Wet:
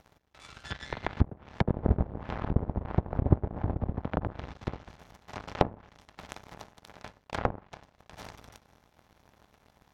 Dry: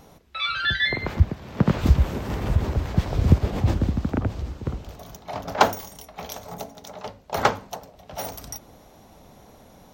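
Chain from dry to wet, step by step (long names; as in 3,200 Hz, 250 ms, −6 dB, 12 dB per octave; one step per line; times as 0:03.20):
compressor on every frequency bin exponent 0.4
power curve on the samples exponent 3
treble cut that deepens with the level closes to 570 Hz, closed at −26 dBFS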